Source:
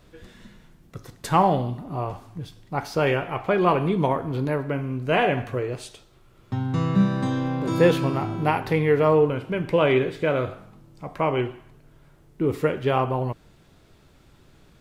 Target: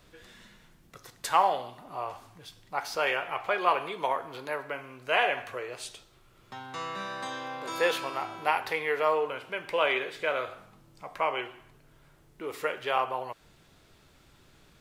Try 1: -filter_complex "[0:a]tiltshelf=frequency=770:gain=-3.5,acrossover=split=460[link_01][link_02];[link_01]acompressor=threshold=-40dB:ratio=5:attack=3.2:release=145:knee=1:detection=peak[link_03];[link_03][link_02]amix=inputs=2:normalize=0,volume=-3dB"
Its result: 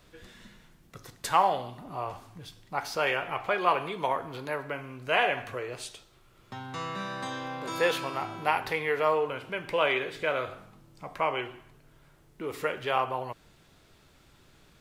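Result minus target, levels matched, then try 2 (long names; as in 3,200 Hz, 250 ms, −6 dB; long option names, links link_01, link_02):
downward compressor: peak gain reduction −9 dB
-filter_complex "[0:a]tiltshelf=frequency=770:gain=-3.5,acrossover=split=460[link_01][link_02];[link_01]acompressor=threshold=-51.5dB:ratio=5:attack=3.2:release=145:knee=1:detection=peak[link_03];[link_03][link_02]amix=inputs=2:normalize=0,volume=-3dB"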